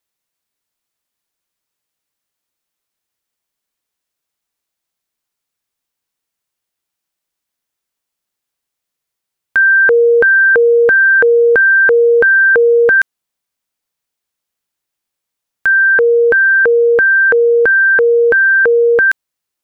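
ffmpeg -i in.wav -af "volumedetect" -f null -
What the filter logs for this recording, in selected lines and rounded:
mean_volume: -13.6 dB
max_volume: -5.7 dB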